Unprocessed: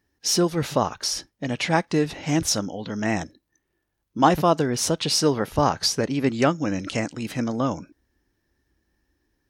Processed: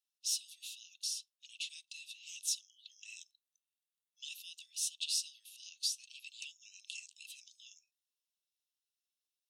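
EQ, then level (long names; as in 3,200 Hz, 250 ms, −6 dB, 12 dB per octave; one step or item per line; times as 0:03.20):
Chebyshev high-pass with heavy ripple 2,600 Hz, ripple 6 dB
−7.0 dB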